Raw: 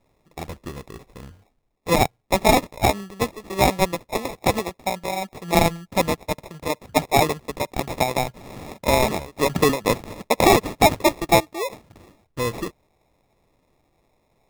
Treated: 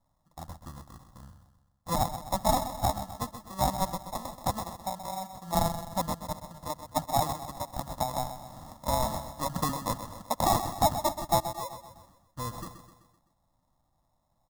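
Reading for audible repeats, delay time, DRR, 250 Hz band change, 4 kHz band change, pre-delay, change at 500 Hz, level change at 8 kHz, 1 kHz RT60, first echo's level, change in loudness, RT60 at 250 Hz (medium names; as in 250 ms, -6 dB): 5, 128 ms, no reverb, -11.5 dB, -10.5 dB, no reverb, -12.5 dB, -7.0 dB, no reverb, -10.5 dB, -9.5 dB, no reverb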